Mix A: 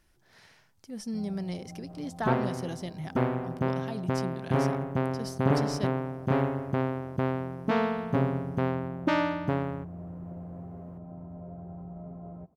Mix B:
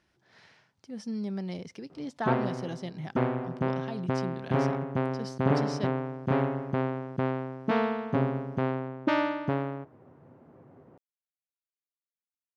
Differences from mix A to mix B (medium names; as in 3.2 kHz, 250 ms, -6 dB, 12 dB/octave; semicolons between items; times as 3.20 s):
first sound: muted; master: add band-pass 100–5200 Hz